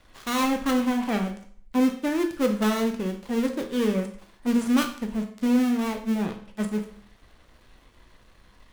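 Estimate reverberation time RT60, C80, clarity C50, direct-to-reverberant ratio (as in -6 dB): 0.55 s, 13.5 dB, 9.0 dB, 4.0 dB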